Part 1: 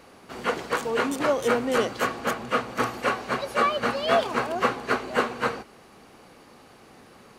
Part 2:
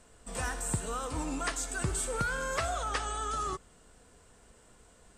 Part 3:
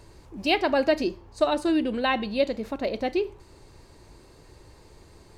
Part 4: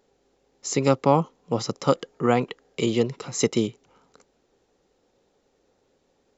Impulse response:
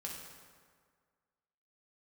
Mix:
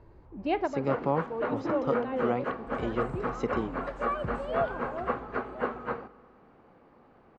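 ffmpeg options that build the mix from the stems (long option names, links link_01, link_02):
-filter_complex "[0:a]adelay=450,volume=-7dB,asplit=2[link_01][link_02];[link_02]volume=-15.5dB[link_03];[1:a]adelay=2400,volume=-6.5dB,afade=type=out:start_time=4.73:duration=0.47:silence=0.375837,asplit=2[link_04][link_05];[link_05]volume=-6.5dB[link_06];[2:a]volume=-3.5dB[link_07];[3:a]highshelf=frequency=2500:gain=10,volume=-9.5dB,asplit=2[link_08][link_09];[link_09]apad=whole_len=236902[link_10];[link_07][link_10]sidechaincompress=threshold=-35dB:ratio=8:attack=16:release=751[link_11];[4:a]atrim=start_sample=2205[link_12];[link_03][link_06]amix=inputs=2:normalize=0[link_13];[link_13][link_12]afir=irnorm=-1:irlink=0[link_14];[link_01][link_04][link_11][link_08][link_14]amix=inputs=5:normalize=0,lowpass=1400"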